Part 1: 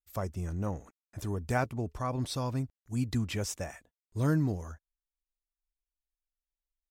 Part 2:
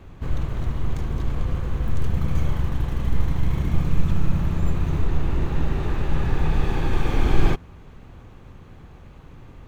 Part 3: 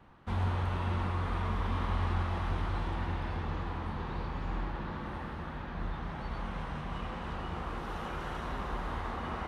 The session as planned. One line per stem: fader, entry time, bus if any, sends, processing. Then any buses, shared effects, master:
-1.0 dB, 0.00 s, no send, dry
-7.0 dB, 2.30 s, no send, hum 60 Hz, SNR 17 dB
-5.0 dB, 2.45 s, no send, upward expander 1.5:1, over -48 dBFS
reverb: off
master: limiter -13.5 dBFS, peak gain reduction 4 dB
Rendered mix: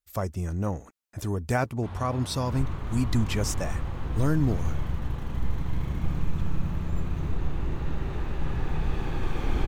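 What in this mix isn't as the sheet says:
stem 1 -1.0 dB -> +5.0 dB; stem 3: entry 2.45 s -> 1.55 s

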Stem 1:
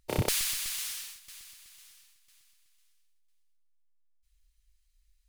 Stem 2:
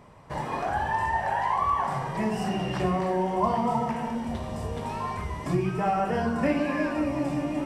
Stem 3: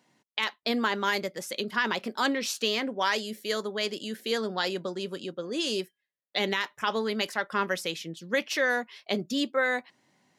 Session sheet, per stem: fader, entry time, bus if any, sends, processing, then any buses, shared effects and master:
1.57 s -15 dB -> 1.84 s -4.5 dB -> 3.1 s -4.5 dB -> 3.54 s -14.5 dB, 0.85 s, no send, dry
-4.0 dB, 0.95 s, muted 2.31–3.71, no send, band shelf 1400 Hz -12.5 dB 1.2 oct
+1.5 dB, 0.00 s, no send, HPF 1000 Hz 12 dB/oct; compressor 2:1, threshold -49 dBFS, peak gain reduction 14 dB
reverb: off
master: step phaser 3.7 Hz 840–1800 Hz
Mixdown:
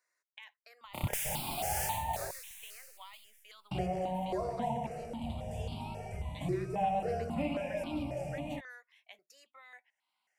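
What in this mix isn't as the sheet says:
stem 1 -15.0 dB -> -4.0 dB; stem 3 +1.5 dB -> -7.5 dB

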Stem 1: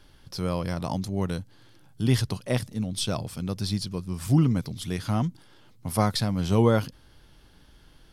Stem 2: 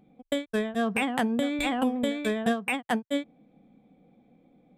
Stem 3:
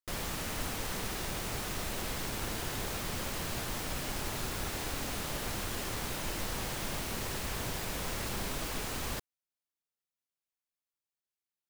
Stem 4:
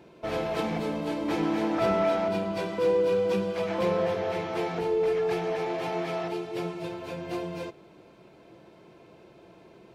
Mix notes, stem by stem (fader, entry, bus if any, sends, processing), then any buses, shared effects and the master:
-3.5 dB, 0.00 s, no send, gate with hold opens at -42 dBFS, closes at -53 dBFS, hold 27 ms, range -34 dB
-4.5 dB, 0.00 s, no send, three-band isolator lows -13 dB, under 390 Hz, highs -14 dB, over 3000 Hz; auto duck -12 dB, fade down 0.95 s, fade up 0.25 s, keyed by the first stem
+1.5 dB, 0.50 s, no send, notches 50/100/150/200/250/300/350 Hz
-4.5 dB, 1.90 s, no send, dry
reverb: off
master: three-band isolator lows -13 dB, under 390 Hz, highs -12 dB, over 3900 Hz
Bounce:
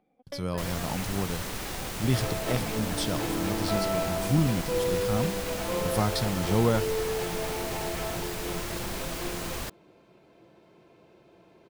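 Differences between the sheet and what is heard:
stem 3: missing notches 50/100/150/200/250/300/350 Hz; master: missing three-band isolator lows -13 dB, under 390 Hz, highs -12 dB, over 3900 Hz

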